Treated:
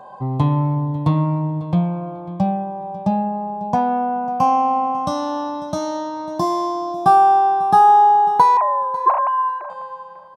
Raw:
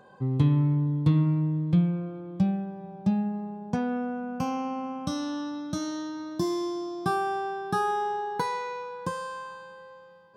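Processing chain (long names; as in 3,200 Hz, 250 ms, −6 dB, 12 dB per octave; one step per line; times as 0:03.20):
0:08.57–0:09.70: three sine waves on the formant tracks
flat-topped bell 800 Hz +14.5 dB 1.1 octaves
repeating echo 546 ms, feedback 19%, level −18 dB
level +4 dB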